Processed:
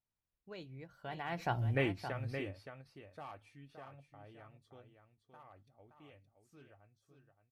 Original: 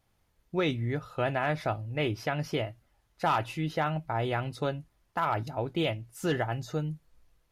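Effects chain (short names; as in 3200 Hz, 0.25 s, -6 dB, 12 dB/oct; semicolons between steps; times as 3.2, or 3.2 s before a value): ending faded out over 1.23 s; Doppler pass-by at 1.66, 40 m/s, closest 2.5 m; on a send: echo 0.57 s -8.5 dB; on the sum: ending taper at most 260 dB/s; gain +5 dB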